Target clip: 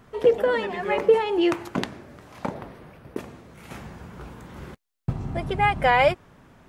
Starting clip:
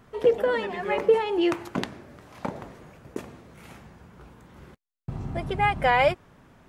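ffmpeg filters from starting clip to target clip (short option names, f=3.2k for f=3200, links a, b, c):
-filter_complex "[0:a]asettb=1/sr,asplit=3[a][b][c];[a]atrim=end=2.544[d];[b]atrim=start=2.54:end=3.2,asetpts=PTS-STARTPTS,afade=t=in:d=0.004:c=qsin,afade=t=out:st=0.656:d=0.004:c=qsin,equalizer=f=7k:w=2.4:g=-11.5[e];[c]atrim=start=3.196[f];[d][e]acrossfade=d=0.004:c1=hsin:c2=qsin[g];[g][f]acrossfade=d=0.004:c1=qsin:c2=hsin,asplit=3[h][i][j];[h]afade=t=out:st=3.7:d=0.02[k];[i]acontrast=59,afade=t=in:st=3.7:d=0.02,afade=t=out:st=5.11:d=0.02[l];[j]afade=t=in:st=5.11:d=0.02[m];[k][l][m]amix=inputs=3:normalize=0,volume=2dB"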